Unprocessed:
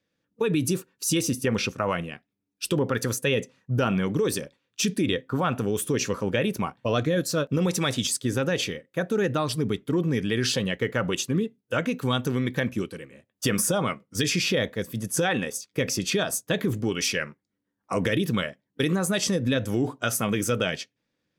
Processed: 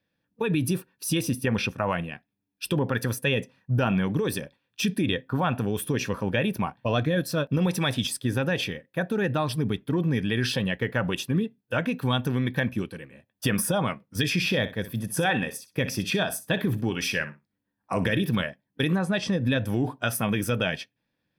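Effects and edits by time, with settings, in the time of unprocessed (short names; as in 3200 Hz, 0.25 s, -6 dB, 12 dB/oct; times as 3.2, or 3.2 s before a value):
14.34–18.42 feedback echo 61 ms, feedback 16%, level -14 dB
18.98–19.41 air absorption 79 m
whole clip: bell 7000 Hz -15 dB 0.5 oct; comb 1.2 ms, depth 34%; dynamic EQ 4300 Hz, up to -4 dB, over -52 dBFS, Q 7.4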